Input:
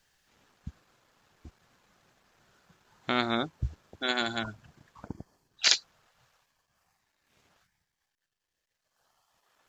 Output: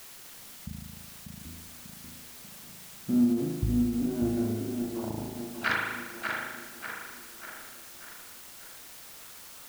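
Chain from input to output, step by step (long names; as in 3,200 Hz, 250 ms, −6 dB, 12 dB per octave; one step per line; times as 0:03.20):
low-pass filter sweep 220 Hz → 1,400 Hz, 0:03.96–0:05.49
on a send: tape delay 591 ms, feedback 53%, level −4 dB, low-pass 4,200 Hz
on the sum: spring reverb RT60 1.2 s, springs 37 ms, chirp 75 ms, DRR −2 dB
in parallel at −9.5 dB: bit-depth reduction 6 bits, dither triangular
on the sum: every ending faded ahead of time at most 110 dB per second
level −2 dB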